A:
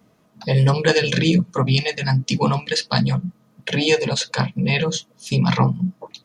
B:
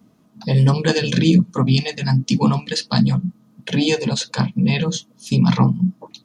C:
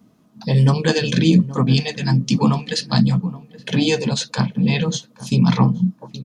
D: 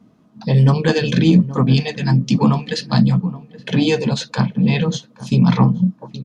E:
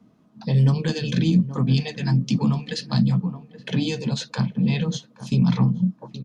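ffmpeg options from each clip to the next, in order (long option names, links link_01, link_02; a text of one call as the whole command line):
ffmpeg -i in.wav -af "equalizer=frequency=250:width_type=o:width=1:gain=8,equalizer=frequency=500:width_type=o:width=1:gain=-5,equalizer=frequency=2000:width_type=o:width=1:gain=-5" out.wav
ffmpeg -i in.wav -filter_complex "[0:a]asplit=2[link_01][link_02];[link_02]adelay=824,lowpass=frequency=1000:poles=1,volume=-16dB,asplit=2[link_03][link_04];[link_04]adelay=824,lowpass=frequency=1000:poles=1,volume=0.38,asplit=2[link_05][link_06];[link_06]adelay=824,lowpass=frequency=1000:poles=1,volume=0.38[link_07];[link_01][link_03][link_05][link_07]amix=inputs=4:normalize=0" out.wav
ffmpeg -i in.wav -filter_complex "[0:a]aemphasis=mode=reproduction:type=50kf,asplit=2[link_01][link_02];[link_02]asoftclip=type=tanh:threshold=-11.5dB,volume=-9.5dB[link_03];[link_01][link_03]amix=inputs=2:normalize=0" out.wav
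ffmpeg -i in.wav -filter_complex "[0:a]acrossover=split=260|3000[link_01][link_02][link_03];[link_02]acompressor=threshold=-26dB:ratio=6[link_04];[link_01][link_04][link_03]amix=inputs=3:normalize=0,volume=-4.5dB" out.wav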